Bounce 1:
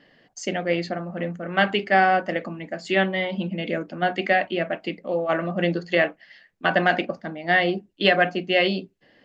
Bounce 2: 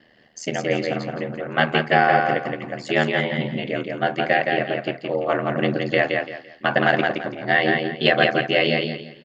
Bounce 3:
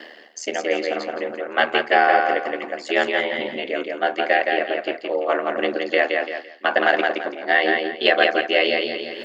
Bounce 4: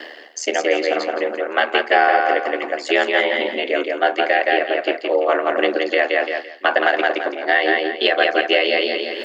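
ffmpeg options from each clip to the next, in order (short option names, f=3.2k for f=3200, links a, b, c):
-filter_complex "[0:a]aeval=exprs='val(0)*sin(2*PI*39*n/s)':c=same,asplit=2[a][b];[b]aecho=0:1:169|338|507|676:0.631|0.17|0.046|0.0124[c];[a][c]amix=inputs=2:normalize=0,volume=3.5dB"
-af "highpass=f=310:w=0.5412,highpass=f=310:w=1.3066,areverse,acompressor=mode=upward:threshold=-22dB:ratio=2.5,areverse,volume=1dB"
-af "alimiter=limit=-9.5dB:level=0:latency=1:release=298,highpass=f=270:w=0.5412,highpass=f=270:w=1.3066,volume=5.5dB"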